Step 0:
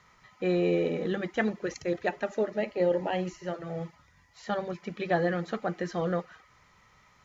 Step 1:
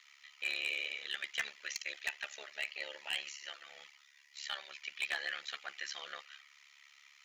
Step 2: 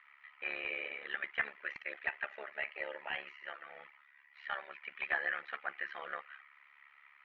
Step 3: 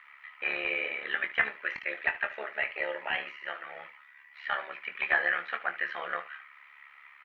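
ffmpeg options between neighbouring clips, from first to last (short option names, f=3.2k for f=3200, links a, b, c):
-af "tremolo=f=71:d=0.889,highpass=f=2.7k:t=q:w=1.9,volume=34dB,asoftclip=hard,volume=-34dB,volume=6dB"
-af "lowpass=f=1.9k:w=0.5412,lowpass=f=1.9k:w=1.3066,volume=6.5dB"
-af "aecho=1:1:23|74:0.335|0.168,volume=7.5dB"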